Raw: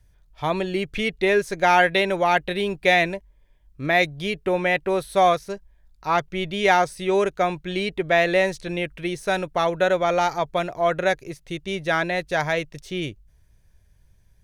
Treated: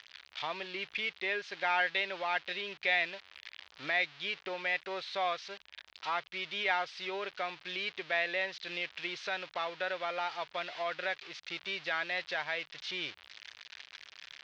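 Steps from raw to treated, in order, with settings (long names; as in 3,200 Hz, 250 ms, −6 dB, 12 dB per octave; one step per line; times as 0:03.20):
spike at every zero crossing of −17 dBFS
camcorder AGC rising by 14 dB per second
Bessel low-pass filter 2,200 Hz, order 8
first difference
level +4 dB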